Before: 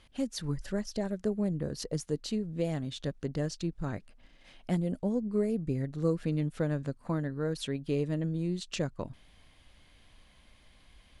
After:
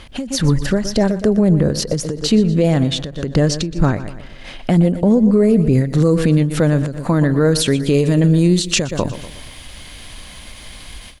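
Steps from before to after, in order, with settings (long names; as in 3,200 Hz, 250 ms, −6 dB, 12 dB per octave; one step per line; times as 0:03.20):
high-shelf EQ 4,600 Hz −3.5 dB, from 0:05.73 +5 dB, from 0:07.94 +10.5 dB
repeating echo 120 ms, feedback 45%, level −16 dB
boost into a limiter +26.5 dB
every ending faded ahead of time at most 110 dB per second
level −4 dB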